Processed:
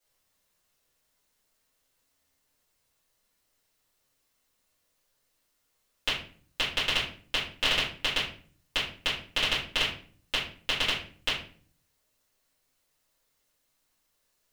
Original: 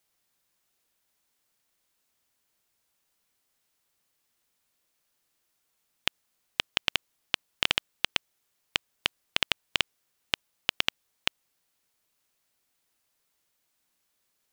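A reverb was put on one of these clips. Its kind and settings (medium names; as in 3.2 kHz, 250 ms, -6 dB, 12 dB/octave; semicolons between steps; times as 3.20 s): simulated room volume 43 m³, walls mixed, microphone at 2.5 m; trim -10 dB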